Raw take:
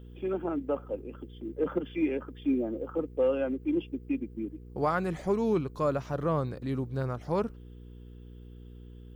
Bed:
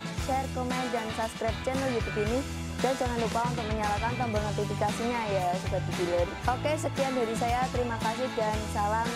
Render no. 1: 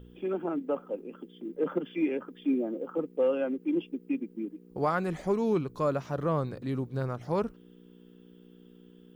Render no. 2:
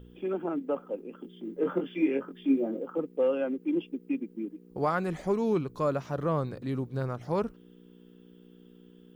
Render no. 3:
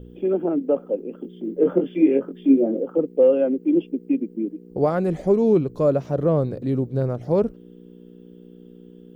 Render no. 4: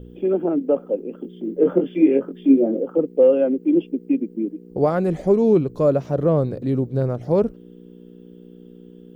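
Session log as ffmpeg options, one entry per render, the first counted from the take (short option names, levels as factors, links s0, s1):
-af "bandreject=f=60:t=h:w=4,bandreject=f=120:t=h:w=4"
-filter_complex "[0:a]asettb=1/sr,asplit=3[s0][s1][s2];[s0]atrim=end=1.224[s3];[s1]atrim=start=1.22:end=2.81,asetpts=PTS-STARTPTS,afade=t=in:d=0.004:c=qsin,afade=t=out:st=1.586:d=0.004:c=qsin,asplit=2[s4][s5];[s5]adelay=22,volume=0.631[s6];[s4][s6]amix=inputs=2:normalize=0,atrim=end_sample=70119[s7];[s2]atrim=start=2.806[s8];[s3][s7]acrossfade=d=0.004:c1=hsin:c2=qsin[s9];[s9][s8]acrossfade=d=0.004:c1=qsin:c2=hsin"
-af "lowshelf=f=780:t=q:w=1.5:g=8.5"
-af "volume=1.19"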